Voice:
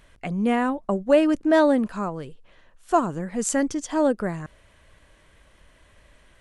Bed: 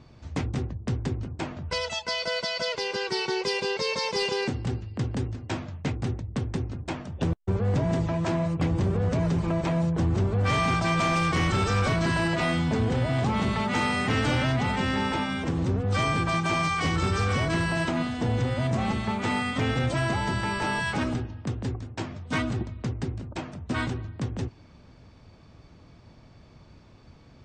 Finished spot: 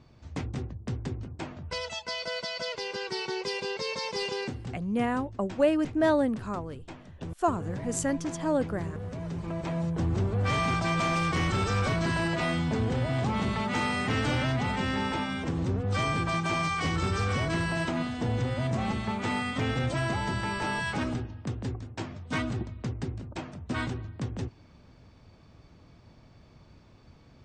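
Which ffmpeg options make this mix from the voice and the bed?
-filter_complex "[0:a]adelay=4500,volume=-6dB[a];[1:a]volume=4dB,afade=t=out:st=4.38:d=0.47:silence=0.446684,afade=t=in:st=9.18:d=0.96:silence=0.354813[b];[a][b]amix=inputs=2:normalize=0"

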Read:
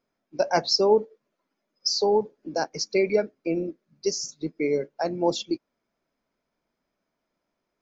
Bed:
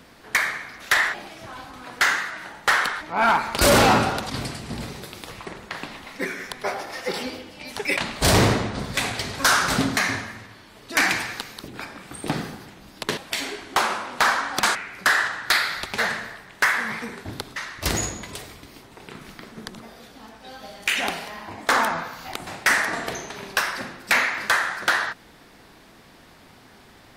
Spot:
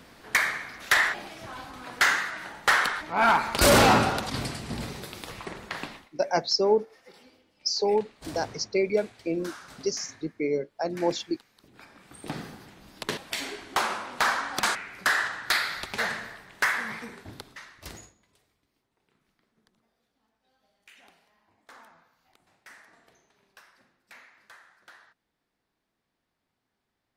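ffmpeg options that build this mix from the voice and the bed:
-filter_complex "[0:a]adelay=5800,volume=-2.5dB[a];[1:a]volume=18dB,afade=t=out:st=5.84:d=0.25:silence=0.0707946,afade=t=in:st=11.52:d=1.39:silence=0.1,afade=t=out:st=16.69:d=1.45:silence=0.0473151[b];[a][b]amix=inputs=2:normalize=0"

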